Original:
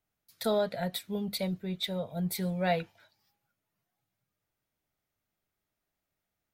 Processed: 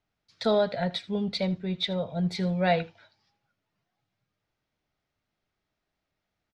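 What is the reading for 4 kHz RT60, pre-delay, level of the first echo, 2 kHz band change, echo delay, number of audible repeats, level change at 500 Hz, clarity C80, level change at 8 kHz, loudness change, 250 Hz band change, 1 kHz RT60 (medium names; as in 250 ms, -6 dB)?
no reverb, no reverb, -19.5 dB, +4.5 dB, 79 ms, 1, +4.5 dB, no reverb, -8.0 dB, +4.5 dB, +4.5 dB, no reverb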